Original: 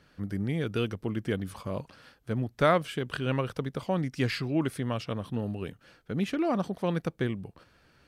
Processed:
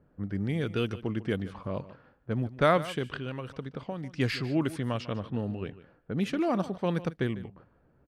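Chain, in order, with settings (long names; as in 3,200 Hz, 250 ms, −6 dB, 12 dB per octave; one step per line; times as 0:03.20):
low-pass that shuts in the quiet parts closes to 680 Hz, open at −24.5 dBFS
0:03.05–0:04.11: downward compressor 6 to 1, threshold −33 dBFS, peak gain reduction 10 dB
single-tap delay 149 ms −16.5 dB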